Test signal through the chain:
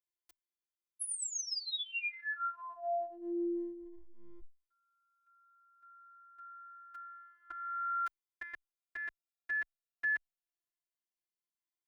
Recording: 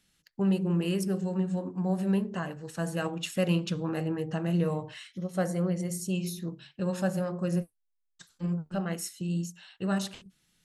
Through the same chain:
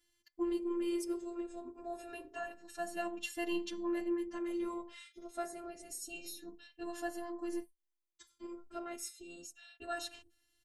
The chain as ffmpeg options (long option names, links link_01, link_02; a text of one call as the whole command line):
ffmpeg -i in.wav -filter_complex "[0:a]afftfilt=real='hypot(re,im)*cos(PI*b)':imag='0':win_size=512:overlap=0.75,asplit=2[link_01][link_02];[link_02]adelay=6.4,afreqshift=0.27[link_03];[link_01][link_03]amix=inputs=2:normalize=1" out.wav